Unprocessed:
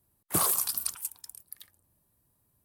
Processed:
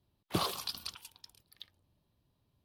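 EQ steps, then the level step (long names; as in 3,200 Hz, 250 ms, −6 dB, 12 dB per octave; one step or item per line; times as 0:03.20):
high-frequency loss of the air 310 metres
high shelf with overshoot 2,500 Hz +10 dB, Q 1.5
0.0 dB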